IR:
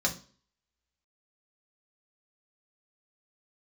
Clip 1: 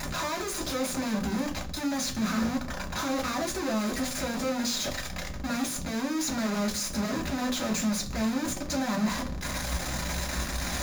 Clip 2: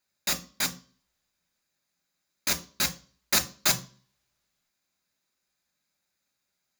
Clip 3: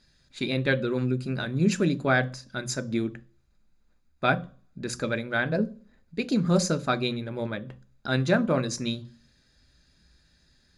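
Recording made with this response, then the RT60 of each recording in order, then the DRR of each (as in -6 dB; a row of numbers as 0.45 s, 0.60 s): 1; 0.40 s, 0.40 s, 0.40 s; -1.0 dB, 4.5 dB, 10.5 dB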